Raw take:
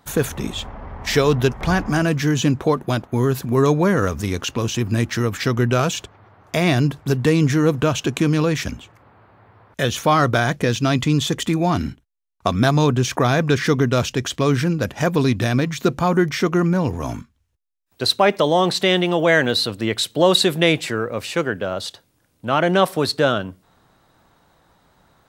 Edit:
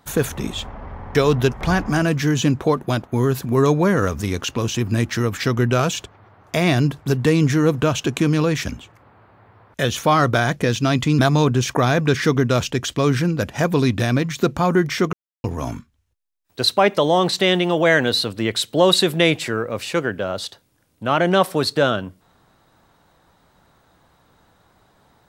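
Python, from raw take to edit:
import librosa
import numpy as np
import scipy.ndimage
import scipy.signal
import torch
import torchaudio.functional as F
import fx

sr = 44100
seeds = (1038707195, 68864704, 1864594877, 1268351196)

y = fx.edit(x, sr, fx.stutter_over(start_s=0.94, slice_s=0.07, count=3),
    fx.cut(start_s=11.19, length_s=1.42),
    fx.silence(start_s=16.55, length_s=0.31), tone=tone)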